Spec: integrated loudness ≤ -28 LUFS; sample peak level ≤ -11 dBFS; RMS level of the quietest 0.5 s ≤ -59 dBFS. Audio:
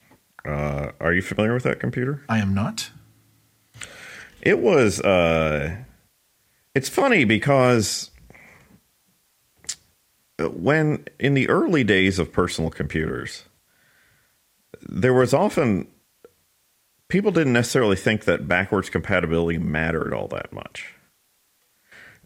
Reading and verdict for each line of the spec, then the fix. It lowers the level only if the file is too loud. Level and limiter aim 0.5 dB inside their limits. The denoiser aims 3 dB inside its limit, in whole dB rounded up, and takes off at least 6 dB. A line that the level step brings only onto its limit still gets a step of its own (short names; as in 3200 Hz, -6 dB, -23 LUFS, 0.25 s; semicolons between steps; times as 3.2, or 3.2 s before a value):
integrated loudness -21.0 LUFS: fail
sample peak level -4.5 dBFS: fail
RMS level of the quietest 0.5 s -65 dBFS: OK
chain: gain -7.5 dB